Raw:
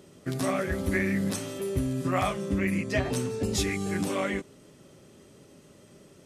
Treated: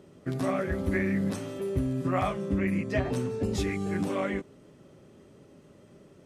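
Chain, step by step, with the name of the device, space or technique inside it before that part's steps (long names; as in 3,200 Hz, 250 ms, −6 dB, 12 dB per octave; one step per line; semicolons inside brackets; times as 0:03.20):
through cloth (high-shelf EQ 3,000 Hz −11.5 dB)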